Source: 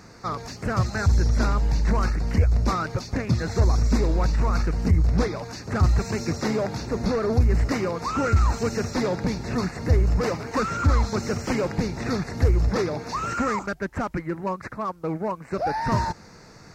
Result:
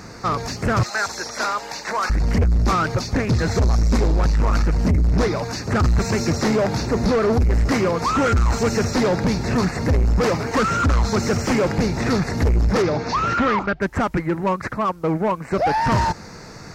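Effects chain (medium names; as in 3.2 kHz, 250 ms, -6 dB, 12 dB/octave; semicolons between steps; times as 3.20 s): 0.83–2.10 s: high-pass 680 Hz 12 dB/octave; saturation -22.5 dBFS, distortion -9 dB; 12.82–13.80 s: low-pass 7 kHz -> 3.8 kHz 24 dB/octave; trim +9 dB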